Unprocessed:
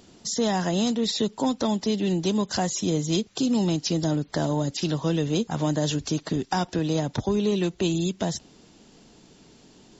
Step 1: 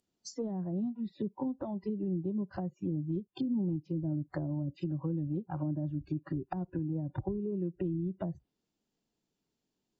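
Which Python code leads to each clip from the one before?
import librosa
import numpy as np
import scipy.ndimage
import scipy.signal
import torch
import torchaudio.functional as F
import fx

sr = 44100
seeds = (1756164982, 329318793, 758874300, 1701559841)

y = fx.noise_reduce_blind(x, sr, reduce_db=25)
y = fx.env_lowpass_down(y, sr, base_hz=340.0, full_db=-22.5)
y = F.gain(torch.from_numpy(y), -7.0).numpy()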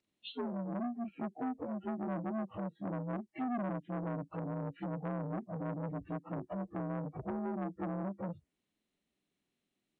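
y = fx.partial_stretch(x, sr, pct=83)
y = fx.transformer_sat(y, sr, knee_hz=760.0)
y = F.gain(torch.from_numpy(y), 1.0).numpy()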